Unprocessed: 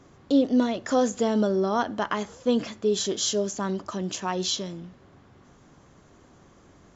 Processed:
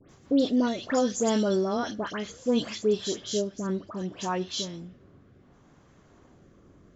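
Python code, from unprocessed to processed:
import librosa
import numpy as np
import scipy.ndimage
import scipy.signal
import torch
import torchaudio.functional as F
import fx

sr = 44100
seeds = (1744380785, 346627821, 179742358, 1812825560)

y = fx.high_shelf(x, sr, hz=3200.0, db=fx.steps((0.0, 7.5), (2.93, -6.5)))
y = fx.dispersion(y, sr, late='highs', ms=99.0, hz=2200.0)
y = fx.rotary_switch(y, sr, hz=6.0, then_hz=0.65, switch_at_s=0.41)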